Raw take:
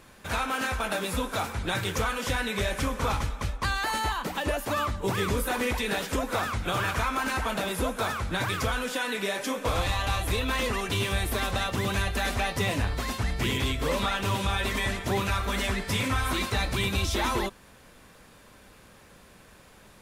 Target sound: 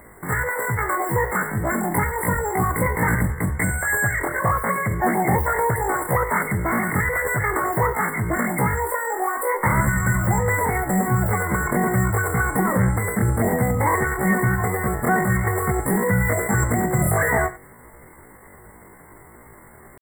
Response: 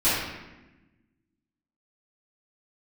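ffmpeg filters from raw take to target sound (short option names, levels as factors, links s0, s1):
-filter_complex "[0:a]asplit=2[s0][s1];[1:a]atrim=start_sample=2205,atrim=end_sample=3969,adelay=23[s2];[s1][s2]afir=irnorm=-1:irlink=0,volume=0.0501[s3];[s0][s3]amix=inputs=2:normalize=0,asetrate=83250,aresample=44100,atempo=0.529732,afftfilt=real='re*(1-between(b*sr/4096,2200,7400))':imag='im*(1-between(b*sr/4096,2200,7400))':win_size=4096:overlap=0.75,volume=2.66"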